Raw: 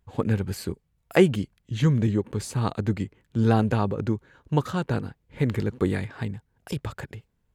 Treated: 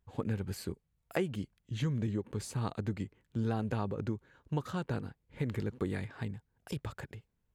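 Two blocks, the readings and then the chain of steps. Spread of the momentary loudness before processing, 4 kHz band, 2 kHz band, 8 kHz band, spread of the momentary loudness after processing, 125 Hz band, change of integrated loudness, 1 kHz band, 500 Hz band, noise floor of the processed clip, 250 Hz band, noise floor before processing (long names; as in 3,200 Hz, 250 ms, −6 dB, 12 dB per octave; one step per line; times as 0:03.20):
14 LU, −10.0 dB, −10.5 dB, −8.0 dB, 10 LU, −10.5 dB, −11.0 dB, −11.0 dB, −12.0 dB, −79 dBFS, −11.0 dB, −72 dBFS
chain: downward compressor 4 to 1, threshold −22 dBFS, peak gain reduction 9.5 dB
level −7.5 dB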